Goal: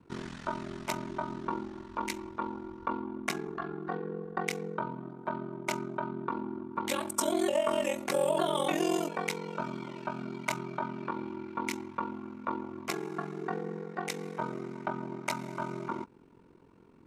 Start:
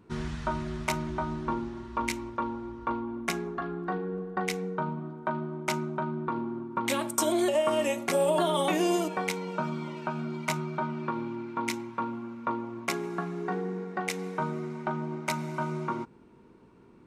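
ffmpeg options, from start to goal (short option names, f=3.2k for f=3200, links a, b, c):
-filter_complex "[0:a]acrossover=split=180|1200|4100[a][b][c][d];[a]acompressor=threshold=-50dB:ratio=6[e];[e][b][c][d]amix=inputs=4:normalize=0,aeval=exprs='val(0)*sin(2*PI*22*n/s)':c=same"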